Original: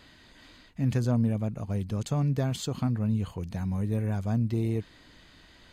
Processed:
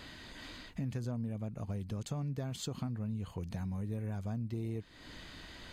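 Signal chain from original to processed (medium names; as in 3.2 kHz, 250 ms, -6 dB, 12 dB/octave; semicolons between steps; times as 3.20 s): compression 4:1, threshold -43 dBFS, peak gain reduction 18.5 dB; trim +5 dB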